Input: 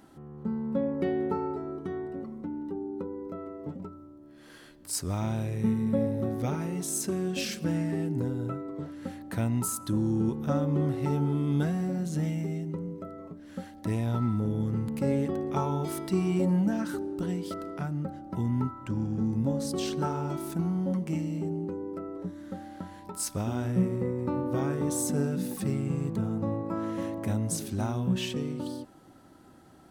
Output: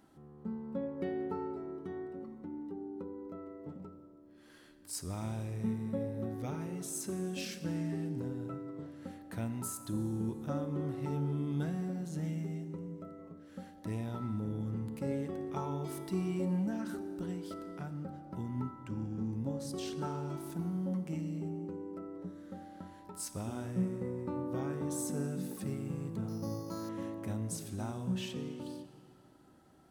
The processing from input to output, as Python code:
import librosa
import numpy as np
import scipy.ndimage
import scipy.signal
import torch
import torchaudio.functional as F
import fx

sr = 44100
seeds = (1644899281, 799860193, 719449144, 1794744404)

y = fx.rev_plate(x, sr, seeds[0], rt60_s=2.5, hf_ratio=0.8, predelay_ms=0, drr_db=10.5)
y = fx.resample_bad(y, sr, factor=8, down='none', up='hold', at=(26.28, 26.89))
y = F.gain(torch.from_numpy(y), -8.5).numpy()